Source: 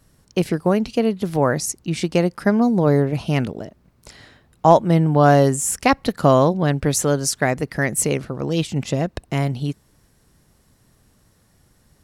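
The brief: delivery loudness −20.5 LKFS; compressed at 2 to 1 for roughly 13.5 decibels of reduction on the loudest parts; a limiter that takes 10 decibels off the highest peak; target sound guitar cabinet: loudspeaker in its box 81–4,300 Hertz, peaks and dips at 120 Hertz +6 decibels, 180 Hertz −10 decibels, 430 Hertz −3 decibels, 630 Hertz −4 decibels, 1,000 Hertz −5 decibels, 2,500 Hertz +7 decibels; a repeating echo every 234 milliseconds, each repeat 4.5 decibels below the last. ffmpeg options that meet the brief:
ffmpeg -i in.wav -af "acompressor=threshold=-34dB:ratio=2,alimiter=limit=-23.5dB:level=0:latency=1,highpass=81,equalizer=frequency=120:width_type=q:width=4:gain=6,equalizer=frequency=180:width_type=q:width=4:gain=-10,equalizer=frequency=430:width_type=q:width=4:gain=-3,equalizer=frequency=630:width_type=q:width=4:gain=-4,equalizer=frequency=1000:width_type=q:width=4:gain=-5,equalizer=frequency=2500:width_type=q:width=4:gain=7,lowpass=frequency=4300:width=0.5412,lowpass=frequency=4300:width=1.3066,aecho=1:1:234|468|702|936|1170|1404|1638|1872|2106:0.596|0.357|0.214|0.129|0.0772|0.0463|0.0278|0.0167|0.01,volume=14.5dB" out.wav

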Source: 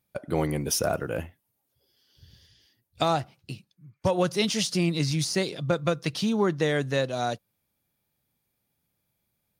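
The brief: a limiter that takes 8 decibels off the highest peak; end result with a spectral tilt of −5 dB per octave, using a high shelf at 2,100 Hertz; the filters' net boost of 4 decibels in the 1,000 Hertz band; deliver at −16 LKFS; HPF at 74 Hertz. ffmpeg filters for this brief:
ffmpeg -i in.wav -af "highpass=74,equalizer=frequency=1000:width_type=o:gain=6.5,highshelf=frequency=2100:gain=-3.5,volume=12.5dB,alimiter=limit=-4dB:level=0:latency=1" out.wav

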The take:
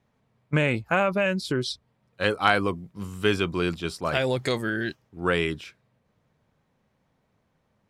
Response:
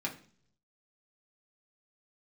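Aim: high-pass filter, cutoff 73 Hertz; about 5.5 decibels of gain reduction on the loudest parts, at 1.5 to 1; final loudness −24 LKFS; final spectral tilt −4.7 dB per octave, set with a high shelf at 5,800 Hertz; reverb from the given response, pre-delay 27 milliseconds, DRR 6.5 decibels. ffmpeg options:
-filter_complex "[0:a]highpass=73,highshelf=frequency=5800:gain=8.5,acompressor=threshold=-31dB:ratio=1.5,asplit=2[link_01][link_02];[1:a]atrim=start_sample=2205,adelay=27[link_03];[link_02][link_03]afir=irnorm=-1:irlink=0,volume=-10dB[link_04];[link_01][link_04]amix=inputs=2:normalize=0,volume=5dB"

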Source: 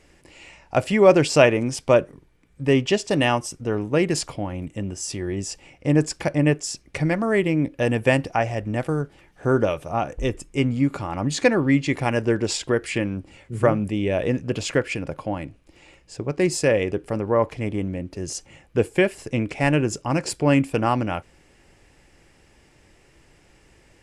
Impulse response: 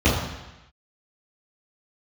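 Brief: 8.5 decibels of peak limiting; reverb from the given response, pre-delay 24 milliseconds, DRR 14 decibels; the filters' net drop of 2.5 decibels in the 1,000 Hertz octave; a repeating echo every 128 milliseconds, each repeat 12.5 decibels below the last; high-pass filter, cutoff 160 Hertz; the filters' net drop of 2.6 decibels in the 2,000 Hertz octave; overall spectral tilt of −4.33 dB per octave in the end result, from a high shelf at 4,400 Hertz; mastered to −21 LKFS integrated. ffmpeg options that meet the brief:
-filter_complex "[0:a]highpass=160,equalizer=frequency=1000:width_type=o:gain=-3,equalizer=frequency=2000:width_type=o:gain=-4.5,highshelf=frequency=4400:gain=9,alimiter=limit=-10.5dB:level=0:latency=1,aecho=1:1:128|256|384:0.237|0.0569|0.0137,asplit=2[link_01][link_02];[1:a]atrim=start_sample=2205,adelay=24[link_03];[link_02][link_03]afir=irnorm=-1:irlink=0,volume=-33.5dB[link_04];[link_01][link_04]amix=inputs=2:normalize=0,volume=3dB"

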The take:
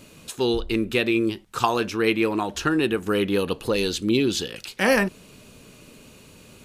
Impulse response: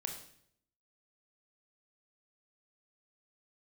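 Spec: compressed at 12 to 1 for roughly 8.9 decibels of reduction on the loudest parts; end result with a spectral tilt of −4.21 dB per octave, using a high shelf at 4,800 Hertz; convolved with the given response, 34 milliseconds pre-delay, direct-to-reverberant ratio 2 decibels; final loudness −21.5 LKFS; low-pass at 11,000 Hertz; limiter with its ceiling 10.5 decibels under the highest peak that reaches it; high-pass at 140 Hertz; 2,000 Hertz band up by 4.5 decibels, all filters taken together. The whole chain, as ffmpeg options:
-filter_complex "[0:a]highpass=140,lowpass=11000,equalizer=frequency=2000:width_type=o:gain=7,highshelf=frequency=4800:gain=-7.5,acompressor=threshold=-22dB:ratio=12,alimiter=limit=-19dB:level=0:latency=1,asplit=2[link_01][link_02];[1:a]atrim=start_sample=2205,adelay=34[link_03];[link_02][link_03]afir=irnorm=-1:irlink=0,volume=-1.5dB[link_04];[link_01][link_04]amix=inputs=2:normalize=0,volume=6.5dB"

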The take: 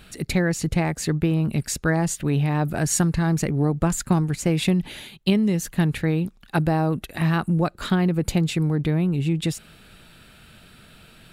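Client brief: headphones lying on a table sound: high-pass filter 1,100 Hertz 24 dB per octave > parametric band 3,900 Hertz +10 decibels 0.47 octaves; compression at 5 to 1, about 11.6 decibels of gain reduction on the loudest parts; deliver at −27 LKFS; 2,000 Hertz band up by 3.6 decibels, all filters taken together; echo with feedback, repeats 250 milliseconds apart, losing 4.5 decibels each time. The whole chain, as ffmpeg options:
ffmpeg -i in.wav -af "equalizer=frequency=2000:width_type=o:gain=4,acompressor=threshold=-29dB:ratio=5,highpass=frequency=1100:width=0.5412,highpass=frequency=1100:width=1.3066,equalizer=frequency=3900:width_type=o:width=0.47:gain=10,aecho=1:1:250|500|750|1000|1250|1500|1750|2000|2250:0.596|0.357|0.214|0.129|0.0772|0.0463|0.0278|0.0167|0.01,volume=7.5dB" out.wav

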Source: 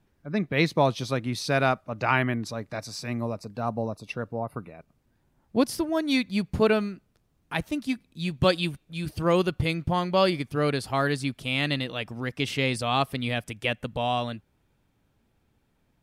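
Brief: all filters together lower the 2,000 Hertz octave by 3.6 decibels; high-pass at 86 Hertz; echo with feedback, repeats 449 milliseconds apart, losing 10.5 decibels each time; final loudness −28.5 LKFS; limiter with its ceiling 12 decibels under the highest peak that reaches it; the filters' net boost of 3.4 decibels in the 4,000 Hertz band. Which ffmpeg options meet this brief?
ffmpeg -i in.wav -af "highpass=86,equalizer=frequency=2000:width_type=o:gain=-7,equalizer=frequency=4000:width_type=o:gain=6.5,alimiter=limit=-19dB:level=0:latency=1,aecho=1:1:449|898|1347:0.299|0.0896|0.0269,volume=2.5dB" out.wav

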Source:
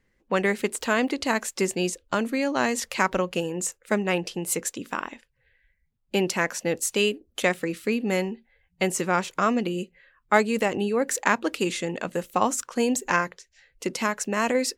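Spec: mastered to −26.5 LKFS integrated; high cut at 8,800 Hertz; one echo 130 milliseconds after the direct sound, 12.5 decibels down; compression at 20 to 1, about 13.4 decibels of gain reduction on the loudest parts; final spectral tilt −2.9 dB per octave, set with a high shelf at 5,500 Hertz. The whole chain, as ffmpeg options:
ffmpeg -i in.wav -af "lowpass=8800,highshelf=frequency=5500:gain=8.5,acompressor=threshold=-27dB:ratio=20,aecho=1:1:130:0.237,volume=6dB" out.wav

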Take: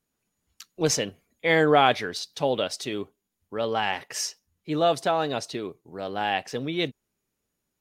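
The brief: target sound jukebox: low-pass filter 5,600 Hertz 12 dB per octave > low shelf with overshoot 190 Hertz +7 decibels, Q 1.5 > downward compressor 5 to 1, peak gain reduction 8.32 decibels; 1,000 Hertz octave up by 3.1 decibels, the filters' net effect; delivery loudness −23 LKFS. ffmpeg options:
ffmpeg -i in.wav -af "lowpass=5600,lowshelf=frequency=190:width_type=q:width=1.5:gain=7,equalizer=frequency=1000:width_type=o:gain=5,acompressor=threshold=-20dB:ratio=5,volume=5dB" out.wav

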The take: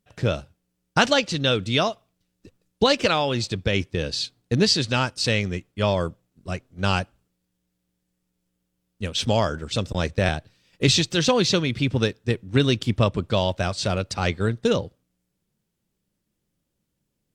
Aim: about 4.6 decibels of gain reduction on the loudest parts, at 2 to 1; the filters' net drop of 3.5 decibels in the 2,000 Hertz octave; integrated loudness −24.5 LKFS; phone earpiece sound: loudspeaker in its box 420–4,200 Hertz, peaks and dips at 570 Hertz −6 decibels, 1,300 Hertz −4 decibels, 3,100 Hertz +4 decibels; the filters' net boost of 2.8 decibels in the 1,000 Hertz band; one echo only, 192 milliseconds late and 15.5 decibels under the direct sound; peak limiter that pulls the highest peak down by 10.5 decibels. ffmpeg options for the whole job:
ffmpeg -i in.wav -af "equalizer=frequency=1000:width_type=o:gain=7.5,equalizer=frequency=2000:width_type=o:gain=-7.5,acompressor=threshold=-21dB:ratio=2,alimiter=limit=-18dB:level=0:latency=1,highpass=420,equalizer=frequency=570:width_type=q:width=4:gain=-6,equalizer=frequency=1300:width_type=q:width=4:gain=-4,equalizer=frequency=3100:width_type=q:width=4:gain=4,lowpass=frequency=4200:width=0.5412,lowpass=frequency=4200:width=1.3066,aecho=1:1:192:0.168,volume=9.5dB" out.wav

